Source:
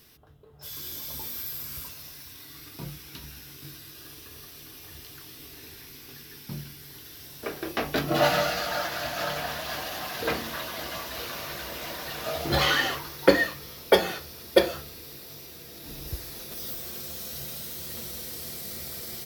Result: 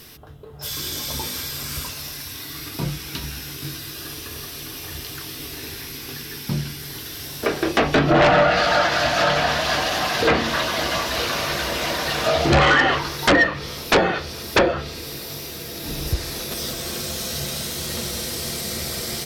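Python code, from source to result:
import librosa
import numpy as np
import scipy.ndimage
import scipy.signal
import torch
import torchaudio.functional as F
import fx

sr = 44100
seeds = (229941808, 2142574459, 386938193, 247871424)

y = fx.rattle_buzz(x, sr, strikes_db=-25.0, level_db=-13.0)
y = fx.env_lowpass_down(y, sr, base_hz=2000.0, full_db=-21.0)
y = fx.fold_sine(y, sr, drive_db=16, ceiling_db=-3.0)
y = F.gain(torch.from_numpy(y), -7.0).numpy()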